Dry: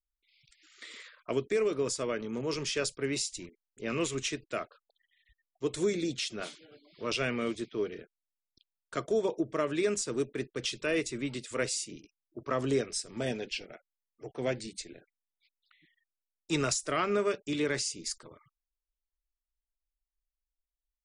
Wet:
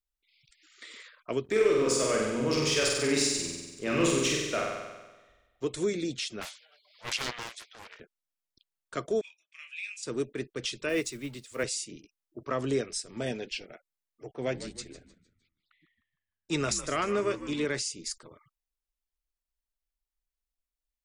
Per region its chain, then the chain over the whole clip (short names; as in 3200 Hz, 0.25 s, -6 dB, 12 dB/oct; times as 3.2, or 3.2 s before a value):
1.44–5.65 notches 60/120/180/240/300/360/420/480 Hz + sample leveller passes 1 + flutter echo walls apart 8.1 m, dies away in 1.2 s
6.41–8 steep high-pass 650 Hz + high shelf 5200 Hz +6.5 dB + Doppler distortion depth 0.93 ms
9.21–10.03 ladder high-pass 2400 Hz, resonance 85% + doubler 24 ms -6 dB
10.89–11.64 block floating point 5-bit + three-band expander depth 100%
14.31–17.66 frequency-shifting echo 0.153 s, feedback 44%, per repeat -82 Hz, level -12.5 dB + mismatched tape noise reduction decoder only
whole clip: dry